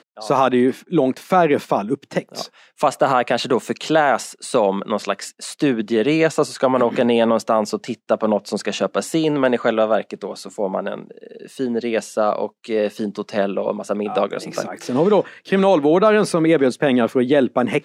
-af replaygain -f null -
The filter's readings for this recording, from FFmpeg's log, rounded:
track_gain = -1.0 dB
track_peak = 0.496